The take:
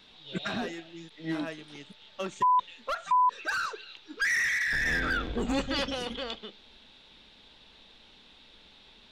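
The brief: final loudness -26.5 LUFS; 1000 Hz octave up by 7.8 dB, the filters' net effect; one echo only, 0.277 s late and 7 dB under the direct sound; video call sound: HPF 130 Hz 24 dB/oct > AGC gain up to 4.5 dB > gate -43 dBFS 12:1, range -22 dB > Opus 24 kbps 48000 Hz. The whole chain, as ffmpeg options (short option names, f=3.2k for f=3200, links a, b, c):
-af "highpass=f=130:w=0.5412,highpass=f=130:w=1.3066,equalizer=f=1k:t=o:g=8,aecho=1:1:277:0.447,dynaudnorm=m=4.5dB,agate=range=-22dB:threshold=-43dB:ratio=12,volume=-3.5dB" -ar 48000 -c:a libopus -b:a 24k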